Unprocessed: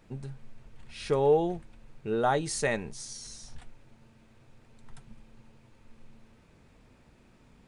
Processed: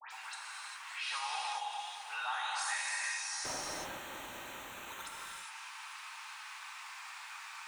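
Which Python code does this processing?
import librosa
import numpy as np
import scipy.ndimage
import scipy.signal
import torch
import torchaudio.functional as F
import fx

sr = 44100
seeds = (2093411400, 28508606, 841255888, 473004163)

p1 = fx.spec_quant(x, sr, step_db=15)
p2 = scipy.signal.sosfilt(scipy.signal.butter(8, 900.0, 'highpass', fs=sr, output='sos'), p1)
p3 = fx.over_compress(p2, sr, threshold_db=-47.0, ratio=-1.0)
p4 = p2 + F.gain(torch.from_numpy(p3), -2.5).numpy()
p5 = fx.dispersion(p4, sr, late='highs', ms=112.0, hz=2200.0)
p6 = p5 + fx.echo_alternate(p5, sr, ms=211, hz=2100.0, feedback_pct=72, wet_db=-12, dry=0)
p7 = fx.sample_hold(p6, sr, seeds[0], rate_hz=5000.0, jitter_pct=0, at=(3.44, 5.03), fade=0.02)
p8 = fx.rev_gated(p7, sr, seeds[1], gate_ms=430, shape='flat', drr_db=-4.5)
p9 = fx.band_squash(p8, sr, depth_pct=70)
y = F.gain(torch.from_numpy(p9), -4.0).numpy()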